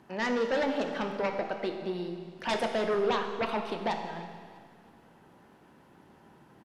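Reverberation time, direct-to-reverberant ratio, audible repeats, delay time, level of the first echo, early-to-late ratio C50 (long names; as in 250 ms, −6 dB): 1.9 s, 4.0 dB, 2, 323 ms, −19.5 dB, 5.5 dB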